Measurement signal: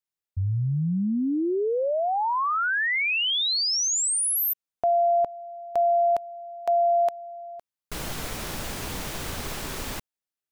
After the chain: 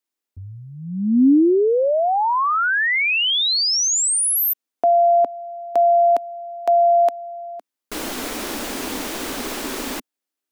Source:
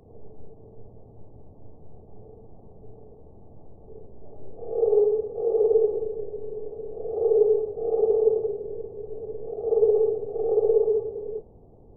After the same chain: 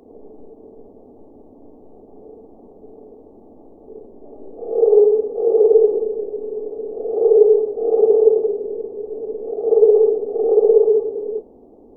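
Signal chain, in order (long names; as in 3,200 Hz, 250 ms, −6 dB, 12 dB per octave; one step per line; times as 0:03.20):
low shelf with overshoot 190 Hz −11 dB, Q 3
level +5.5 dB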